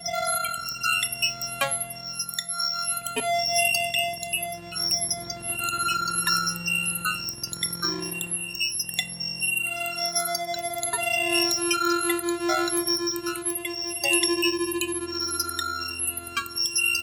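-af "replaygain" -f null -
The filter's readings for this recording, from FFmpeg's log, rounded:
track_gain = +5.0 dB
track_peak = 0.283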